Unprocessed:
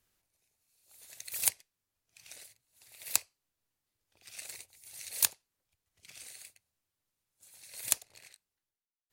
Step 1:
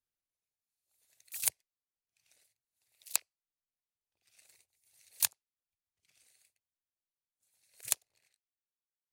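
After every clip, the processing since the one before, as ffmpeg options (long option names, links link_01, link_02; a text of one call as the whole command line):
ffmpeg -i in.wav -af "afwtdn=0.00631,volume=-2.5dB" out.wav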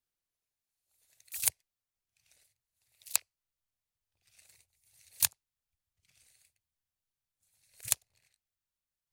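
ffmpeg -i in.wav -af "asubboost=boost=5:cutoff=140,volume=2dB" out.wav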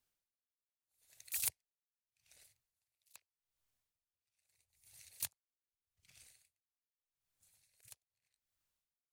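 ffmpeg -i in.wav -af "asoftclip=type=tanh:threshold=-20.5dB,aeval=exprs='val(0)*pow(10,-29*(0.5-0.5*cos(2*PI*0.81*n/s))/20)':channel_layout=same,volume=4.5dB" out.wav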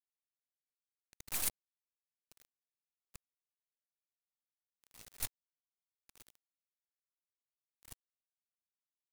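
ffmpeg -i in.wav -af "acrusher=bits=6:dc=4:mix=0:aa=0.000001,asoftclip=type=hard:threshold=-34dB,volume=7dB" out.wav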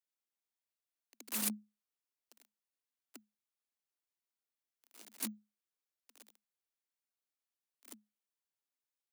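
ffmpeg -i in.wav -af "afreqshift=210" out.wav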